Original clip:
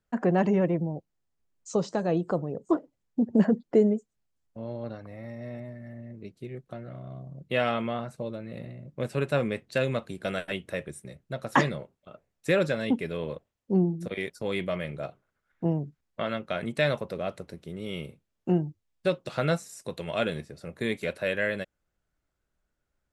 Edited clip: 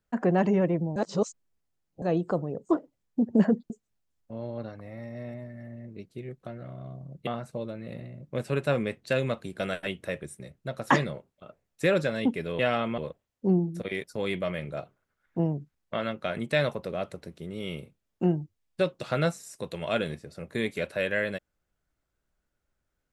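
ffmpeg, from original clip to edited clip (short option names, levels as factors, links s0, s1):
-filter_complex "[0:a]asplit=7[s0][s1][s2][s3][s4][s5][s6];[s0]atrim=end=0.962[s7];[s1]atrim=start=0.958:end=2.022,asetpts=PTS-STARTPTS,areverse[s8];[s2]atrim=start=2.018:end=3.702[s9];[s3]atrim=start=3.958:end=7.532[s10];[s4]atrim=start=7.918:end=13.242[s11];[s5]atrim=start=7.528:end=7.922[s12];[s6]atrim=start=13.238[s13];[s7][s8]acrossfade=d=0.004:c1=hsin:c2=hsin[s14];[s14][s9]acrossfade=d=0.004:c1=hsin:c2=hsin[s15];[s15][s10]acrossfade=d=0.004:c1=hsin:c2=hsin[s16];[s16][s11]acrossfade=d=0.004:c1=hsin:c2=hsin[s17];[s17][s12]acrossfade=d=0.004:c1=hsin:c2=hsin[s18];[s18][s13]acrossfade=d=0.004:c1=hsin:c2=hsin"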